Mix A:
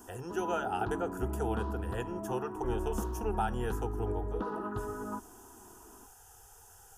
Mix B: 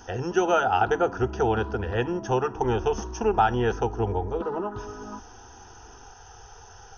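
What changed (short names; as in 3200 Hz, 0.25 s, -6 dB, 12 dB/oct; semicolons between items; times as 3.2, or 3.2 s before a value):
speech +12.0 dB; master: add brick-wall FIR low-pass 6500 Hz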